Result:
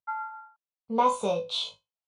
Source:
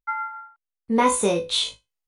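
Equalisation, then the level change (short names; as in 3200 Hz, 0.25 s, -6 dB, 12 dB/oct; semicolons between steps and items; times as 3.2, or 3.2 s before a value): BPF 160–3700 Hz; fixed phaser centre 770 Hz, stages 4; -1.0 dB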